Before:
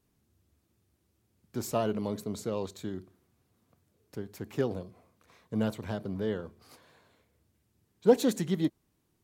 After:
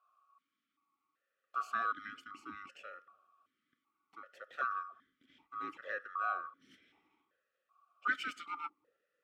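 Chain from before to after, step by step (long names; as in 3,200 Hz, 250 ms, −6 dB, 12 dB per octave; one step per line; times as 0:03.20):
neighbouring bands swapped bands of 1,000 Hz
bucket-brigade delay 304 ms, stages 1,024, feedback 40%, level −19.5 dB
formant filter that steps through the vowels 2.6 Hz
level +8.5 dB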